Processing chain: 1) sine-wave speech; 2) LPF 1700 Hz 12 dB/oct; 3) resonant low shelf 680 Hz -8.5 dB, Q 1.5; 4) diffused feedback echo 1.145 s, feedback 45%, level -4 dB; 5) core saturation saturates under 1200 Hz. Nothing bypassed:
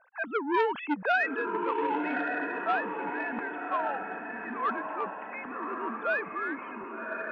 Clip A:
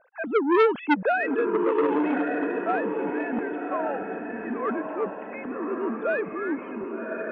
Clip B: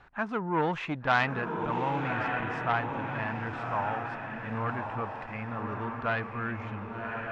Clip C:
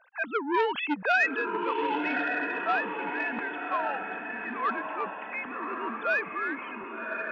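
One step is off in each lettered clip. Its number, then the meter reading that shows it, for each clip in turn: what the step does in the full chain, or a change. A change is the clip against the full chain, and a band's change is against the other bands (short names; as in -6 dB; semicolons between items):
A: 3, loudness change +5.0 LU; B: 1, 4 kHz band +4.5 dB; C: 2, 4 kHz band +5.5 dB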